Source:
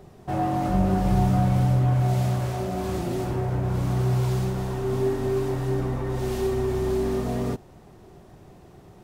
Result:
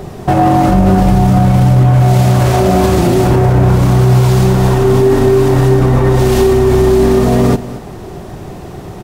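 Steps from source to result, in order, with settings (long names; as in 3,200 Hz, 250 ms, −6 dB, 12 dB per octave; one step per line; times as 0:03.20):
on a send: single-tap delay 227 ms −19.5 dB
on the sum: boost into a limiter +22 dB
level −1 dB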